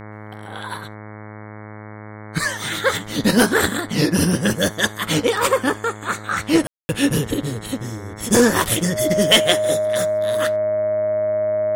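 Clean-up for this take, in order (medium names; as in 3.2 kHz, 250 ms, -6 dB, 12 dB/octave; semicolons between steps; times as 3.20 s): de-hum 106 Hz, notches 21; band-stop 620 Hz, Q 30; room tone fill 6.67–6.89 s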